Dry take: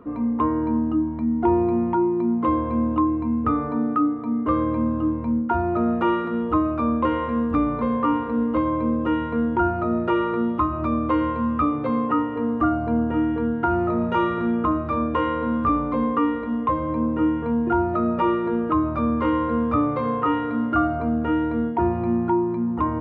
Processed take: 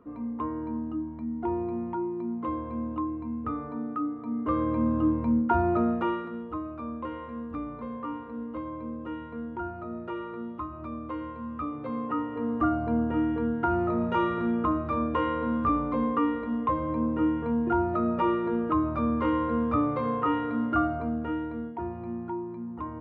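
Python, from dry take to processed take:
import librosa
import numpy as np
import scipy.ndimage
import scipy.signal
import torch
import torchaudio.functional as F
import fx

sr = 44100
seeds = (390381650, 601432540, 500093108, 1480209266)

y = fx.gain(x, sr, db=fx.line((3.95, -10.5), (5.02, -1.5), (5.71, -1.5), (6.5, -14.0), (11.41, -14.0), (12.64, -4.5), (20.78, -4.5), (21.8, -13.0)))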